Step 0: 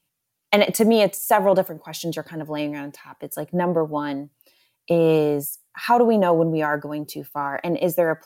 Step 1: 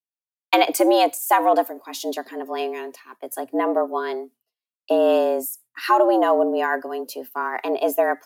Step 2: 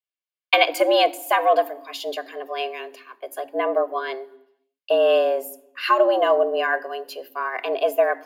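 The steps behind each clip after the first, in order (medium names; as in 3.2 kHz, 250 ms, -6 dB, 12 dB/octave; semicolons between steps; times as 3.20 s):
expander -40 dBFS; frequency shift +120 Hz
reverberation RT60 0.85 s, pre-delay 3 ms, DRR 16.5 dB; trim -7 dB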